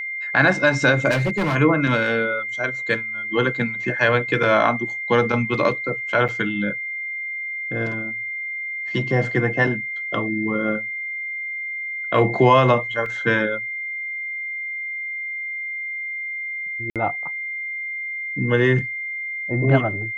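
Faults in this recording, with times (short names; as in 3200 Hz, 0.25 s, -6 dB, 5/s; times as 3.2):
tone 2100 Hz -26 dBFS
1.1–1.56 clipped -17.5 dBFS
6.28–6.29 gap 6.7 ms
13.06 gap 2.5 ms
16.9–16.96 gap 57 ms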